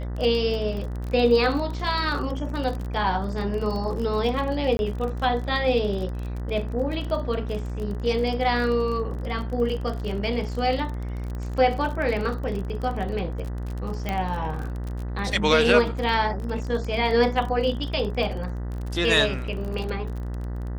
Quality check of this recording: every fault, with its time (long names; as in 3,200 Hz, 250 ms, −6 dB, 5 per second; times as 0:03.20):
mains buzz 60 Hz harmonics 33 −30 dBFS
surface crackle 30 per second −30 dBFS
0:04.77–0:04.79: drop-out 21 ms
0:14.09: click −13 dBFS